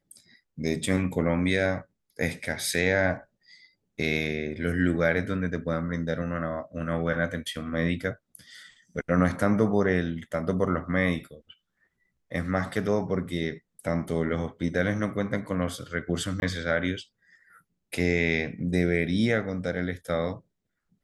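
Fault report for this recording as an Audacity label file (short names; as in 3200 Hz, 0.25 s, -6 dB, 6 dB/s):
16.400000	16.420000	gap 21 ms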